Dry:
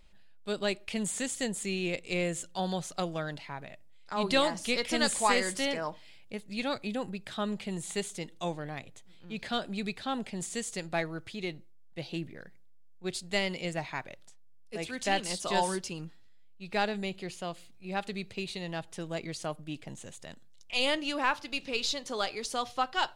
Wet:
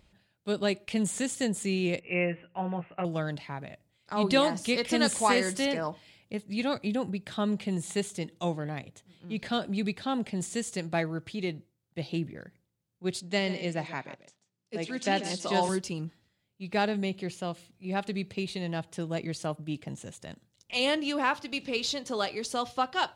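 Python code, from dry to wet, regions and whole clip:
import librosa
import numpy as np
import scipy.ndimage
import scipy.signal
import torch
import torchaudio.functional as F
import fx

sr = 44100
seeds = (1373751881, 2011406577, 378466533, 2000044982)

y = fx.chain(x, sr, fx.cheby_ripple(hz=2800.0, ripple_db=3),
    fx.tilt_shelf(db=-5.0, hz=1100.0),
    fx.doubler(ms=17.0, db=-5.5), at=(2.0, 3.05))
y = fx.chain(y, sr, fx.cheby1_bandpass(low_hz=190.0, high_hz=6700.0, order=2),
    fx.echo_single(ms=140, db=-13.5), at=(13.2, 15.69))
y = scipy.signal.sosfilt(scipy.signal.butter(2, 73.0, 'highpass', fs=sr, output='sos'), y)
y = fx.low_shelf(y, sr, hz=440.0, db=7.0)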